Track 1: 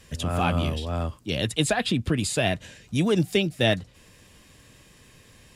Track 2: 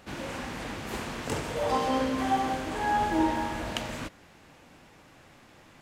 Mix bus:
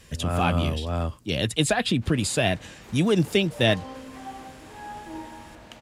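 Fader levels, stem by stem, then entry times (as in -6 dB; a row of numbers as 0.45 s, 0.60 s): +1.0 dB, -12.5 dB; 0.00 s, 1.95 s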